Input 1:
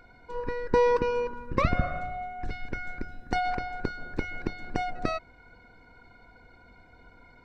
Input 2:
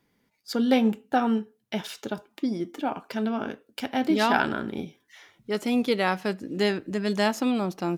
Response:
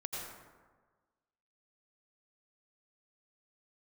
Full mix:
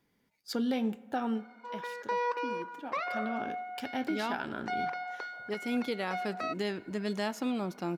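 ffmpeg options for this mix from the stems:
-filter_complex "[0:a]highpass=f=610:w=0.5412,highpass=f=610:w=1.3066,highshelf=f=5.1k:g=-6.5,adelay=1350,volume=-1dB[a];[1:a]volume=3dB,afade=t=out:st=1.24:d=0.26:silence=0.316228,afade=t=in:st=2.87:d=0.65:silence=0.421697,asplit=2[b][c];[c]volume=-23.5dB[d];[2:a]atrim=start_sample=2205[e];[d][e]afir=irnorm=-1:irlink=0[f];[a][b][f]amix=inputs=3:normalize=0,alimiter=limit=-23dB:level=0:latency=1:release=232"

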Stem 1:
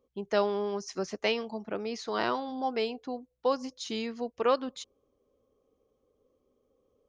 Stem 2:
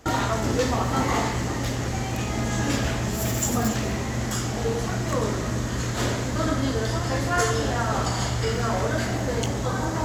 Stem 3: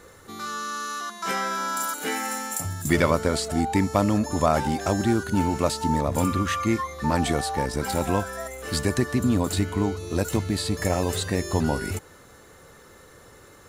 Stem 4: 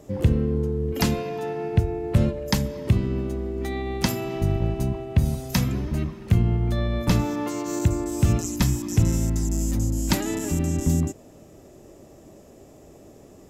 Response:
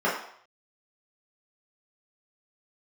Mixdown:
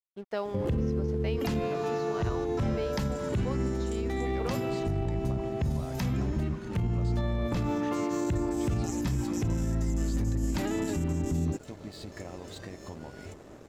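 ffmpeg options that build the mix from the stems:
-filter_complex "[0:a]volume=-8.5dB[a];[2:a]lowpass=f=7.2k:w=0.5412,lowpass=f=7.2k:w=1.3066,adelay=1350,volume=-13.5dB[b];[3:a]adelay=450,volume=-2.5dB[c];[a][c]amix=inputs=2:normalize=0,lowpass=f=3k:p=1,alimiter=limit=-22dB:level=0:latency=1:release=19,volume=0dB[d];[b]acompressor=threshold=-43dB:ratio=6,volume=0dB[e];[d][e]amix=inputs=2:normalize=0,acontrast=28,aeval=exprs='sgn(val(0))*max(abs(val(0))-0.00266,0)':c=same,alimiter=limit=-21.5dB:level=0:latency=1:release=232"

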